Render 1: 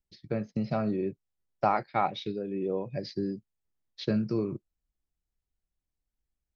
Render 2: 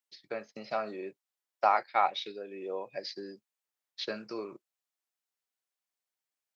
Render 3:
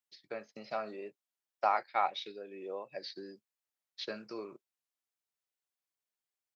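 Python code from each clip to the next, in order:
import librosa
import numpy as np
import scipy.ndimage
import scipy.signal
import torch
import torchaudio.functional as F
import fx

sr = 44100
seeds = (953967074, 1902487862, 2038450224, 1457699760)

y1 = scipy.signal.sosfilt(scipy.signal.butter(2, 700.0, 'highpass', fs=sr, output='sos'), x)
y1 = y1 * 10.0 ** (3.0 / 20.0)
y2 = fx.record_warp(y1, sr, rpm=33.33, depth_cents=100.0)
y2 = y2 * 10.0 ** (-4.0 / 20.0)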